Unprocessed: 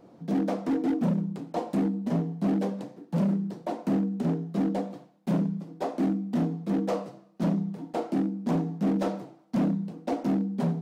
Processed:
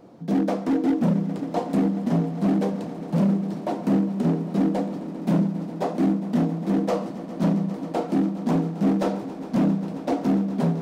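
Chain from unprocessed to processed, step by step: echo with a slow build-up 135 ms, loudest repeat 5, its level -17.5 dB; trim +4.5 dB

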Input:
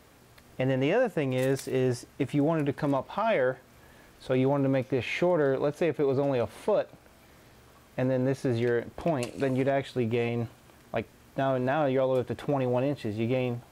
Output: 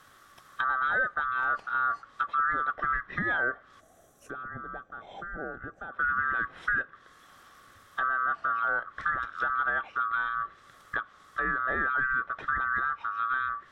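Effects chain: split-band scrambler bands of 1 kHz; low-pass that closes with the level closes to 1.6 kHz, closed at -26.5 dBFS; time-frequency box 3.80–5.93 s, 850–5600 Hz -14 dB

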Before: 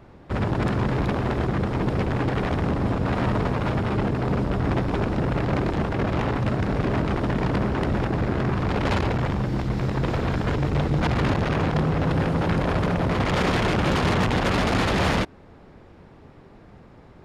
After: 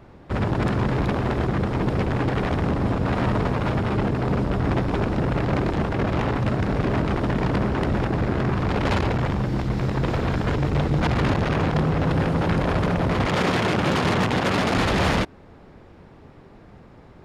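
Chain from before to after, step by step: 13.27–14.77 s: high-pass 100 Hz 12 dB/octave; trim +1 dB

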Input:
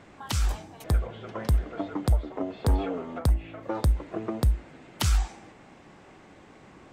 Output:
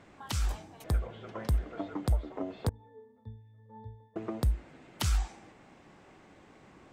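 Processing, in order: 2.69–4.16 s: pitch-class resonator A, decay 0.58 s; trim -5 dB

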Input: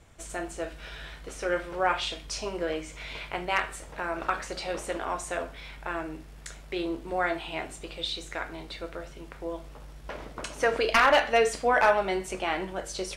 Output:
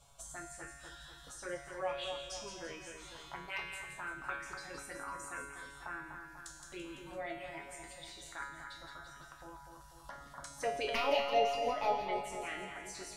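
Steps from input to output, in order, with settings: reverb removal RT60 1.5 s; touch-sensitive phaser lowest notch 320 Hz, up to 1.6 kHz, full sweep at -22 dBFS; feedback comb 140 Hz, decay 0.84 s, harmonics all, mix 90%; two-band feedback delay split 2.2 kHz, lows 246 ms, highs 168 ms, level -6.5 dB; tape noise reduction on one side only encoder only; trim +7 dB

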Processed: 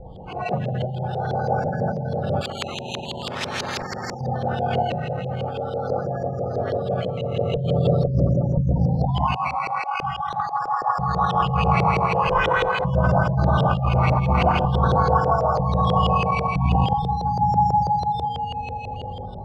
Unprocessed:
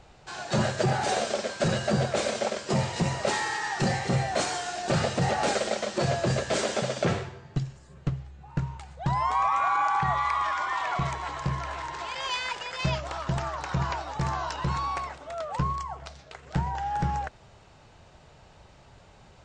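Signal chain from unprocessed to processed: local Wiener filter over 25 samples; reverberation RT60 4.6 s, pre-delay 3 ms, DRR -8 dB; compressor with a negative ratio -27 dBFS, ratio -1; thinning echo 287 ms, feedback 30%, high-pass 170 Hz, level -15.5 dB; spectral gate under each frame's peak -20 dB strong; dynamic bell 330 Hz, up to -4 dB, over -40 dBFS, Q 0.96; decimation with a swept rate 10×, swing 60% 0.44 Hz; LFO low-pass saw up 6.1 Hz 440–3300 Hz; bass shelf 240 Hz +6.5 dB; 2.41–4.21 s: spectrum-flattening compressor 4:1; trim +2 dB

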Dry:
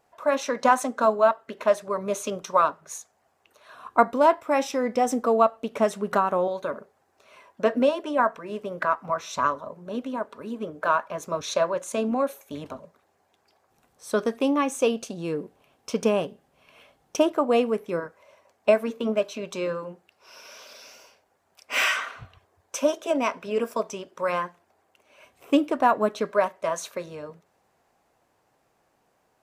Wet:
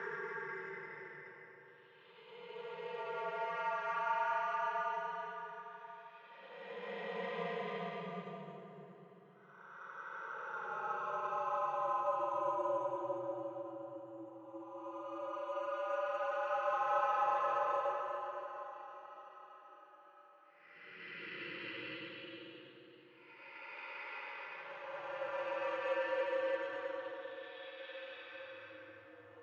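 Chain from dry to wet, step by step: in parallel at -2.5 dB: upward compressor, threshold -26 dBFS; on the sum: differentiator; reverse; compression 12:1, threshold -44 dBFS, peak gain reduction 21 dB; reverse; Paulstretch 22×, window 0.10 s, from 0.52 s; careless resampling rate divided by 6×, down filtered, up zero stuff; reverberation RT60 3.3 s, pre-delay 3 ms, DRR 2 dB; mistuned SSB -83 Hz 260–3100 Hz; trim +7.5 dB

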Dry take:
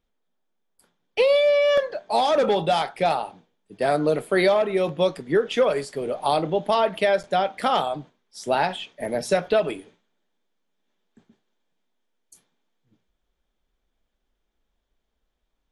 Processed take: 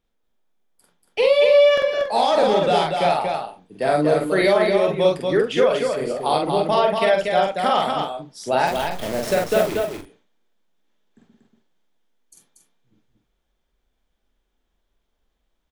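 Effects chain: 8.67–9.78 s: send-on-delta sampling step -27.5 dBFS; on a send: loudspeakers at several distances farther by 16 m -2 dB, 81 m -4 dB, 96 m -10 dB

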